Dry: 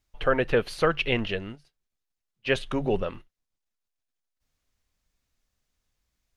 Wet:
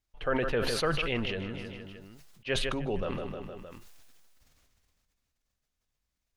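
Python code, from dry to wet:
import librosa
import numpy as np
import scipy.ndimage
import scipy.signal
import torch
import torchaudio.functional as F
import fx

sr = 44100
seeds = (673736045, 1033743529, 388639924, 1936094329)

y = fx.echo_feedback(x, sr, ms=155, feedback_pct=46, wet_db=-15.0)
y = fx.sustainer(y, sr, db_per_s=22.0)
y = F.gain(torch.from_numpy(y), -7.5).numpy()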